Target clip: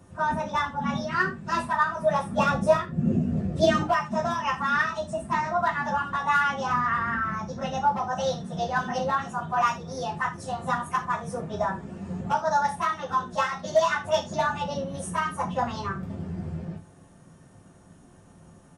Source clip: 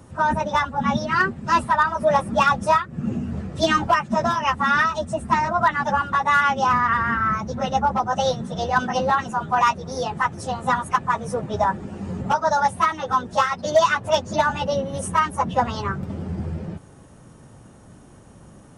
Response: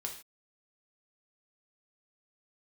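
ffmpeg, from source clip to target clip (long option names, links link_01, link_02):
-filter_complex "[0:a]asettb=1/sr,asplit=3[link_01][link_02][link_03];[link_01]atrim=end=2.384[link_04];[link_02]atrim=start=2.38:end=3.83,asetpts=PTS-STARTPTS,afade=type=in:duration=0.004:curve=qsin,afade=type=out:start_time=1.446:duration=0.004:curve=qsin,lowshelf=frequency=730:width_type=q:width=1.5:gain=7[link_05];[link_03]atrim=start=3.826[link_06];[link_04][link_05]acrossfade=duration=0.004:curve1=hsin:curve2=qsin[link_07];[link_07][link_06]acrossfade=duration=0.004:curve1=qsin:curve2=hsin,aecho=1:1:77:0.0891[link_08];[1:a]atrim=start_sample=2205,asetrate=79380,aresample=44100[link_09];[link_08][link_09]afir=irnorm=-1:irlink=0"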